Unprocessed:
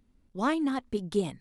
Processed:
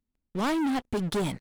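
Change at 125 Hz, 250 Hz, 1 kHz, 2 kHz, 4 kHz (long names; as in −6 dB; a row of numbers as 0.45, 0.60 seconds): +5.0, +2.0, +1.5, +2.0, +5.0 decibels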